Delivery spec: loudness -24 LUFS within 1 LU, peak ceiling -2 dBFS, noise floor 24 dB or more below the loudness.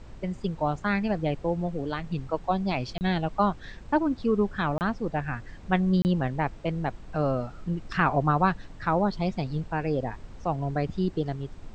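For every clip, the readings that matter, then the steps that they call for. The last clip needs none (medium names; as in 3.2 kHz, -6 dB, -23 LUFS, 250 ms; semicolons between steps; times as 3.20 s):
dropouts 3; longest dropout 29 ms; noise floor -45 dBFS; noise floor target -52 dBFS; loudness -28.0 LUFS; peak level -9.0 dBFS; loudness target -24.0 LUFS
-> interpolate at 2.98/4.78/6.02 s, 29 ms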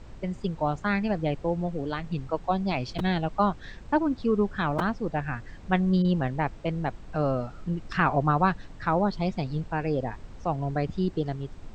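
dropouts 0; noise floor -45 dBFS; noise floor target -52 dBFS
-> noise print and reduce 7 dB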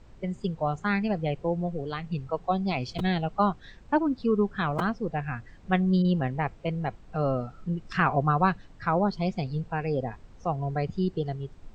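noise floor -51 dBFS; noise floor target -53 dBFS
-> noise print and reduce 6 dB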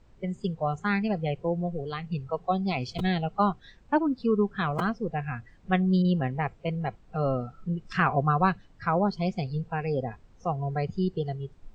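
noise floor -56 dBFS; loudness -28.5 LUFS; peak level -9.5 dBFS; loudness target -24.0 LUFS
-> trim +4.5 dB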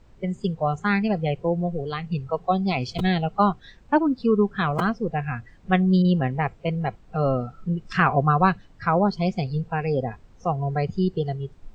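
loudness -24.0 LUFS; peak level -5.0 dBFS; noise floor -52 dBFS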